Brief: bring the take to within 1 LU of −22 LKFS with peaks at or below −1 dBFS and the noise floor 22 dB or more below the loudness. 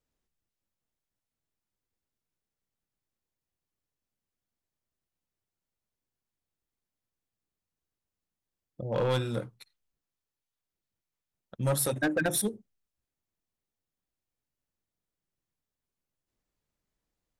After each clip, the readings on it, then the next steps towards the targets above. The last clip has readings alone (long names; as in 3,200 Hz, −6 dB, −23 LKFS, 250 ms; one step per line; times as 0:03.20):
share of clipped samples 0.3%; peaks flattened at −22.0 dBFS; integrated loudness −29.5 LKFS; sample peak −22.0 dBFS; target loudness −22.0 LKFS
→ clipped peaks rebuilt −22 dBFS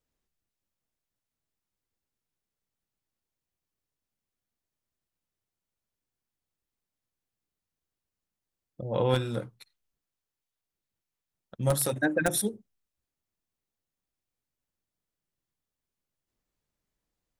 share of clipped samples 0.0%; integrated loudness −28.5 LKFS; sample peak −13.0 dBFS; target loudness −22.0 LKFS
→ level +6.5 dB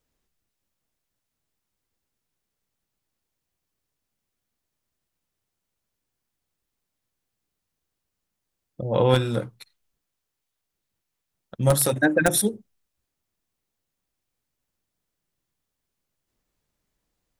integrated loudness −22.0 LKFS; sample peak −6.5 dBFS; background noise floor −83 dBFS